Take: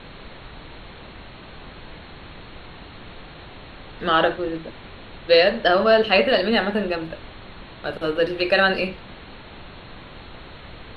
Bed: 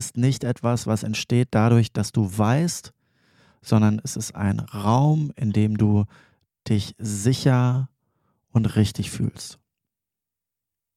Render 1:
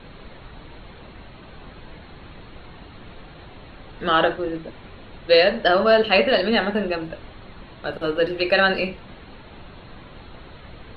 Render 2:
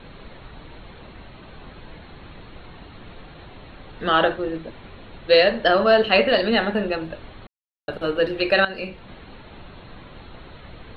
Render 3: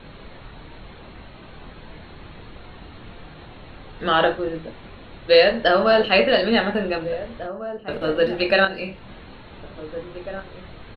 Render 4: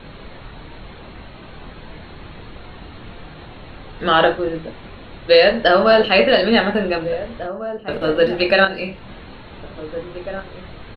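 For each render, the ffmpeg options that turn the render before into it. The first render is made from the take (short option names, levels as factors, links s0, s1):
-af "afftdn=nr=6:nf=-42"
-filter_complex "[0:a]asplit=4[s0][s1][s2][s3];[s0]atrim=end=7.47,asetpts=PTS-STARTPTS,afade=t=out:st=7.466:d=0.004:c=hsin[s4];[s1]atrim=start=7.47:end=7.88,asetpts=PTS-STARTPTS,volume=0[s5];[s2]atrim=start=7.88:end=8.65,asetpts=PTS-STARTPTS,afade=t=in:d=0.004:c=hsin,afade=t=out:st=0.766:d=0.004:c=hsin:silence=0.16788[s6];[s3]atrim=start=8.65,asetpts=PTS-STARTPTS,afade=t=in:d=0.47:silence=0.16788[s7];[s4][s5][s6][s7]concat=n=4:v=0:a=1"
-filter_complex "[0:a]asplit=2[s0][s1];[s1]adelay=26,volume=0.355[s2];[s0][s2]amix=inputs=2:normalize=0,asplit=2[s3][s4];[s4]adelay=1749,volume=0.251,highshelf=f=4000:g=-39.4[s5];[s3][s5]amix=inputs=2:normalize=0"
-af "volume=1.58,alimiter=limit=0.794:level=0:latency=1"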